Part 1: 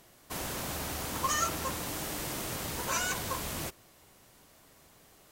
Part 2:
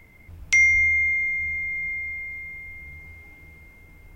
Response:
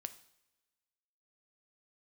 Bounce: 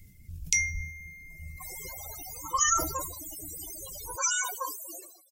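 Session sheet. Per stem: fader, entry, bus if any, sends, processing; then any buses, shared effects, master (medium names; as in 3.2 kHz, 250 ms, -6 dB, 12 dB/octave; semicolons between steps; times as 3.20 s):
-0.5 dB, 1.30 s, send -12.5 dB, high-pass 290 Hz 24 dB/octave; treble shelf 2.4 kHz +11 dB; loudest bins only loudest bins 16
+1.5 dB, 0.00 s, no send, reverb removal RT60 1.3 s; FFT filter 160 Hz 0 dB, 980 Hz -28 dB, 6.5 kHz +5 dB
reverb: on, pre-delay 3 ms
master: decay stretcher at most 76 dB/s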